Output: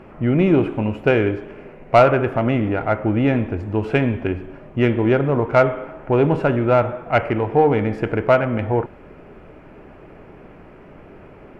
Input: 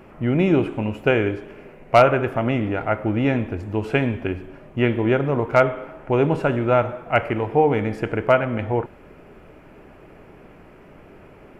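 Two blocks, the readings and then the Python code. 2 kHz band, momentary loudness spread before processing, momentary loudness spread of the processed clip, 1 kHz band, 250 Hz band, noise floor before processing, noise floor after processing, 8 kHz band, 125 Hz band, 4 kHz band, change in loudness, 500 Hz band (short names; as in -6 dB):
+0.5 dB, 8 LU, 8 LU, +1.5 dB, +3.0 dB, -47 dBFS, -44 dBFS, n/a, +3.0 dB, -0.5 dB, +2.0 dB, +2.0 dB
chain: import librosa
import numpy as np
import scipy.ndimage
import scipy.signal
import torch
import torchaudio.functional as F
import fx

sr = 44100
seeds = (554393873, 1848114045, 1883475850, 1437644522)

p1 = fx.lowpass(x, sr, hz=2600.0, slope=6)
p2 = 10.0 ** (-16.0 / 20.0) * np.tanh(p1 / 10.0 ** (-16.0 / 20.0))
y = p1 + (p2 * librosa.db_to_amplitude(-6.0))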